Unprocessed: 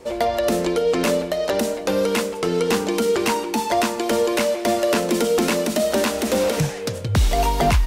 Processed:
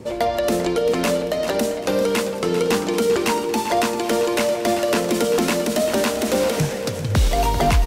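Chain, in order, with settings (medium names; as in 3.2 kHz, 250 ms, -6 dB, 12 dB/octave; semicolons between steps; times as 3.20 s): band noise 87–450 Hz -42 dBFS; on a send: feedback delay 393 ms, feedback 45%, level -11 dB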